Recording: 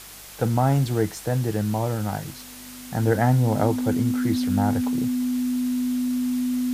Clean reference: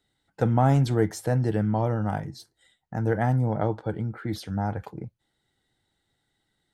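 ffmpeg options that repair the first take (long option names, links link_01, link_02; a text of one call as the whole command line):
ffmpeg -i in.wav -af "bandreject=frequency=49.5:width_type=h:width=4,bandreject=frequency=99:width_type=h:width=4,bandreject=frequency=148.5:width_type=h:width=4,bandreject=frequency=198:width_type=h:width=4,bandreject=frequency=250:width=30,afwtdn=0.0089,asetnsamples=nb_out_samples=441:pad=0,asendcmd='2.77 volume volume -4dB',volume=0dB" out.wav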